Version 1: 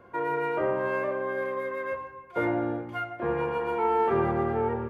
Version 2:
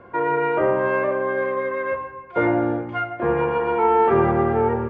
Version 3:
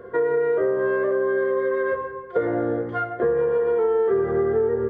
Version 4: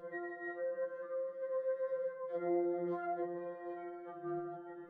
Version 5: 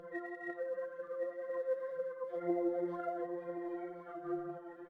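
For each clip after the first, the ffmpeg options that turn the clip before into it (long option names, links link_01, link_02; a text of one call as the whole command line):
ffmpeg -i in.wav -af "lowpass=3100,volume=7.5dB" out.wav
ffmpeg -i in.wav -af "superequalizer=7b=3.55:9b=0.447:11b=1.41:12b=0.316:16b=2.24,acompressor=threshold=-19dB:ratio=6" out.wav
ffmpeg -i in.wav -af "flanger=delay=9.7:depth=8.9:regen=-54:speed=0.48:shape=triangular,alimiter=level_in=3dB:limit=-24dB:level=0:latency=1:release=107,volume=-3dB,afftfilt=real='re*2.83*eq(mod(b,8),0)':imag='im*2.83*eq(mod(b,8),0)':win_size=2048:overlap=0.75,volume=-2dB" out.wav
ffmpeg -i in.wav -af "aphaser=in_gain=1:out_gain=1:delay=4.3:decay=0.48:speed=2:type=triangular,aecho=1:1:1072:0.316,volume=-1.5dB" out.wav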